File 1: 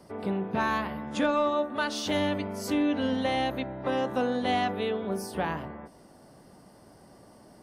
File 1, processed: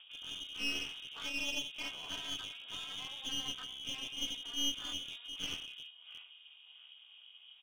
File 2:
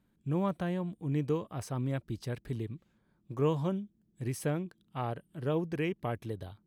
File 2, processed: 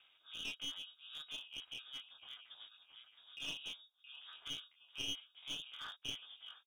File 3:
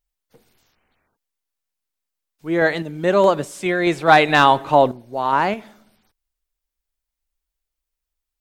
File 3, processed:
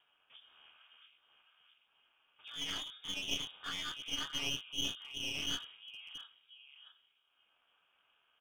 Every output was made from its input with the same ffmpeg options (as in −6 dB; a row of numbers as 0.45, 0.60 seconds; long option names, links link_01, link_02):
-filter_complex "[0:a]asplit=3[link_01][link_02][link_03];[link_01]bandpass=frequency=730:width_type=q:width=8,volume=0dB[link_04];[link_02]bandpass=frequency=1090:width_type=q:width=8,volume=-6dB[link_05];[link_03]bandpass=frequency=2440:width_type=q:width=8,volume=-9dB[link_06];[link_04][link_05][link_06]amix=inputs=3:normalize=0,areverse,acompressor=threshold=-35dB:ratio=10,areverse,equalizer=frequency=2500:width_type=o:width=2.9:gain=9,bandreject=frequency=2600:width=11,aecho=1:1:671|1342:0.188|0.0377,flanger=delay=19.5:depth=6.7:speed=0.77,acompressor=mode=upward:threshold=-52dB:ratio=2.5,flanger=delay=8.9:depth=5.7:regen=-11:speed=0.37:shape=triangular,aeval=exprs='val(0)*sin(2*PI*140*n/s)':channel_layout=same,lowpass=frequency=3200:width_type=q:width=0.5098,lowpass=frequency=3200:width_type=q:width=0.6013,lowpass=frequency=3200:width_type=q:width=0.9,lowpass=frequency=3200:width_type=q:width=2.563,afreqshift=-3800,aeval=exprs='clip(val(0),-1,0.00282)':channel_layout=same,volume=8dB"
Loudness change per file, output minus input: −9.5, −11.0, −21.5 LU